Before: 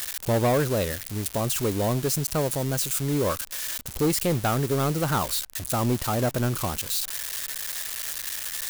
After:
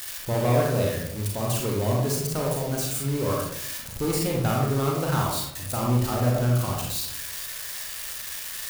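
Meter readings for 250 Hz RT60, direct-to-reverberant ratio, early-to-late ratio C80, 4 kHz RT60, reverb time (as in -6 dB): 1.0 s, -2.5 dB, 5.0 dB, 0.40 s, 0.75 s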